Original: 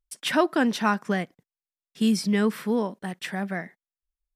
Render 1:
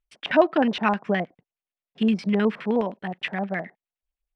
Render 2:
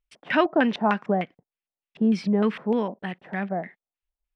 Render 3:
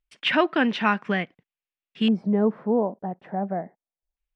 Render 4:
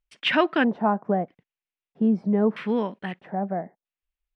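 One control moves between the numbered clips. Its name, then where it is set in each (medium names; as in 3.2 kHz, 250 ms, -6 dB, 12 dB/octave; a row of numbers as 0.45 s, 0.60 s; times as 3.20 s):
LFO low-pass, rate: 9.6 Hz, 3.3 Hz, 0.24 Hz, 0.78 Hz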